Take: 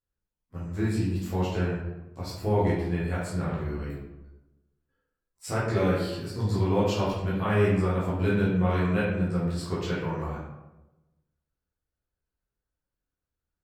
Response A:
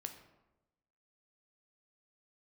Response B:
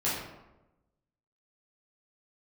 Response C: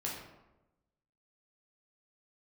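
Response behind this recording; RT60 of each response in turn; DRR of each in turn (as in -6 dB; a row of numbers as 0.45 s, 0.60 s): B; 1.0 s, 1.0 s, 1.0 s; 5.5 dB, -9.5 dB, -4.5 dB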